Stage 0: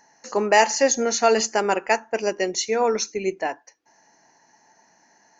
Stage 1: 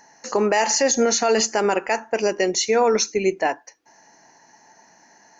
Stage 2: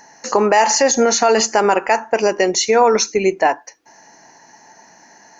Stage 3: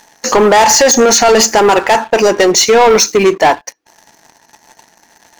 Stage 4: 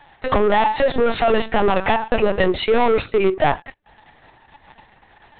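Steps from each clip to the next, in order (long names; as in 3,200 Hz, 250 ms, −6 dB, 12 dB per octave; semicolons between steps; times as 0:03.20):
brickwall limiter −15.5 dBFS, peak gain reduction 10.5 dB; level +5.5 dB
dynamic equaliser 970 Hz, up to +6 dB, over −33 dBFS, Q 1.1; in parallel at +1 dB: downward compressor, threshold −23 dBFS, peak gain reduction 12 dB
leveller curve on the samples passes 3
downward compressor 16 to 1, threshold −12 dBFS, peak gain reduction 7.5 dB; linear-prediction vocoder at 8 kHz pitch kept; level −1.5 dB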